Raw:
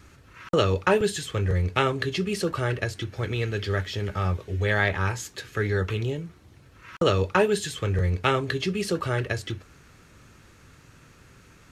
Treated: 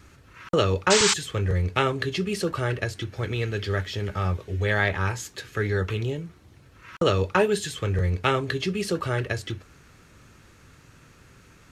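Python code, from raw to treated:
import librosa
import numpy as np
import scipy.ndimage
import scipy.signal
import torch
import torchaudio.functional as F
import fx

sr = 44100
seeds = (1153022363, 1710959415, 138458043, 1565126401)

y = fx.spec_paint(x, sr, seeds[0], shape='noise', start_s=0.9, length_s=0.24, low_hz=820.0, high_hz=8300.0, level_db=-21.0)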